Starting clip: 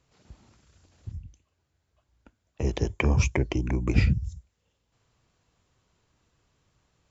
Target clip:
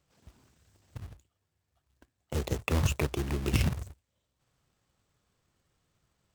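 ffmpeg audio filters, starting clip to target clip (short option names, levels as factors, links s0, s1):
-af "acrusher=bits=2:mode=log:mix=0:aa=0.000001,asetrate=49392,aresample=44100,volume=0.531"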